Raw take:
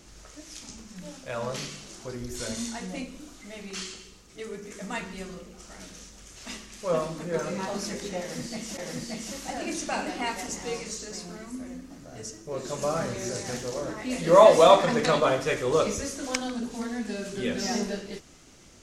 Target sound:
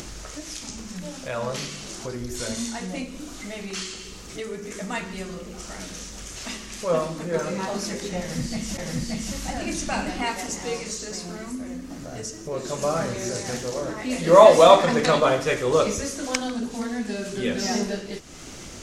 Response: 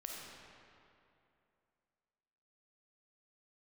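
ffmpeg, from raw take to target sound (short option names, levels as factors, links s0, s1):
-filter_complex "[0:a]acompressor=mode=upward:threshold=0.0251:ratio=2.5,asplit=3[s0][s1][s2];[s0]afade=t=out:st=8.12:d=0.02[s3];[s1]asubboost=boost=4:cutoff=170,afade=t=in:st=8.12:d=0.02,afade=t=out:st=10.22:d=0.02[s4];[s2]afade=t=in:st=10.22:d=0.02[s5];[s3][s4][s5]amix=inputs=3:normalize=0,volume=1.5"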